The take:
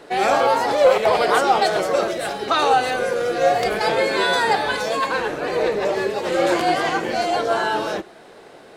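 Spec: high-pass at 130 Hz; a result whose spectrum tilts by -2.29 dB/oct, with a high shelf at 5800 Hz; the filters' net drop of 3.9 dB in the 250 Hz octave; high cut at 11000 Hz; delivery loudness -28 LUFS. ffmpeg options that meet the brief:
-af "highpass=130,lowpass=11k,equalizer=f=250:t=o:g=-6,highshelf=f=5.8k:g=3,volume=-8dB"

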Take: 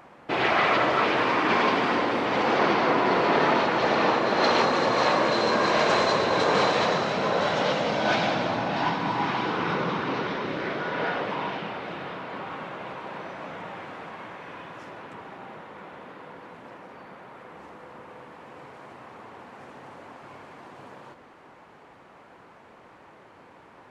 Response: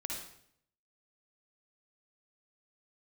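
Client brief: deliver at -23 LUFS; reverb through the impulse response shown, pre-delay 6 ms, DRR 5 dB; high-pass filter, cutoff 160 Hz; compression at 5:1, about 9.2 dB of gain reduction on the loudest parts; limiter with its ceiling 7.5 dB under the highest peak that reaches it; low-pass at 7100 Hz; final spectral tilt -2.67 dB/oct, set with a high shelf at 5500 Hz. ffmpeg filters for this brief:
-filter_complex "[0:a]highpass=160,lowpass=7.1k,highshelf=f=5.5k:g=-5,acompressor=threshold=-29dB:ratio=5,alimiter=level_in=2.5dB:limit=-24dB:level=0:latency=1,volume=-2.5dB,asplit=2[a][b];[1:a]atrim=start_sample=2205,adelay=6[c];[b][c]afir=irnorm=-1:irlink=0,volume=-5.5dB[d];[a][d]amix=inputs=2:normalize=0,volume=12.5dB"

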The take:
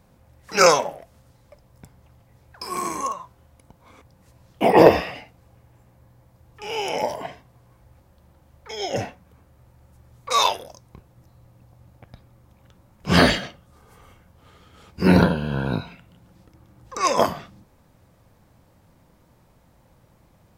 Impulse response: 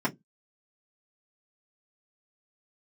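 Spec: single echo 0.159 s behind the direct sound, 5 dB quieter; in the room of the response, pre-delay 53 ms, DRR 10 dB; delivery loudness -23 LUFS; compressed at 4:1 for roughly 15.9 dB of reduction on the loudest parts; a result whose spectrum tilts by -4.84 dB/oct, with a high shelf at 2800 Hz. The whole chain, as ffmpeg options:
-filter_complex "[0:a]highshelf=f=2.8k:g=-8,acompressor=threshold=-27dB:ratio=4,aecho=1:1:159:0.562,asplit=2[a][b];[1:a]atrim=start_sample=2205,adelay=53[c];[b][c]afir=irnorm=-1:irlink=0,volume=-20dB[d];[a][d]amix=inputs=2:normalize=0,volume=8dB"

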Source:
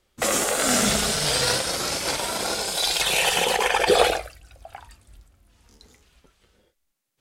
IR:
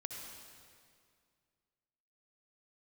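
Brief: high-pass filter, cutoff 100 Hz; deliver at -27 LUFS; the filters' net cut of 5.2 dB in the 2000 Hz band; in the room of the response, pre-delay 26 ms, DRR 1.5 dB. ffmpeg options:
-filter_complex "[0:a]highpass=100,equalizer=f=2k:t=o:g=-7,asplit=2[a][b];[1:a]atrim=start_sample=2205,adelay=26[c];[b][c]afir=irnorm=-1:irlink=0,volume=0dB[d];[a][d]amix=inputs=2:normalize=0,volume=-6.5dB"

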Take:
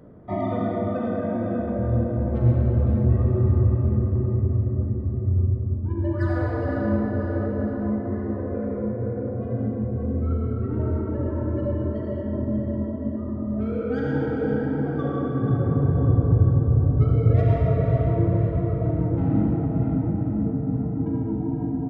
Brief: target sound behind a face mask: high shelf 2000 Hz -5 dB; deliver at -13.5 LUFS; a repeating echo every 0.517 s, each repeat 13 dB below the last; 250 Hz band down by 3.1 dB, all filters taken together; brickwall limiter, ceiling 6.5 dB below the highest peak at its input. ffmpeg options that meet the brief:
-af "equalizer=f=250:t=o:g=-4,alimiter=limit=-14.5dB:level=0:latency=1,highshelf=f=2k:g=-5,aecho=1:1:517|1034|1551:0.224|0.0493|0.0108,volume=12dB"

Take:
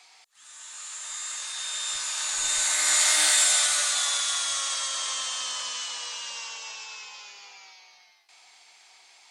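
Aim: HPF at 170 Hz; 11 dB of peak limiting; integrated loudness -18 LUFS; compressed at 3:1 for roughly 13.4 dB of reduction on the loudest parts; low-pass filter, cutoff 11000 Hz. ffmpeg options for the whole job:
-af "highpass=170,lowpass=11k,acompressor=threshold=-37dB:ratio=3,volume=21.5dB,alimiter=limit=-11dB:level=0:latency=1"

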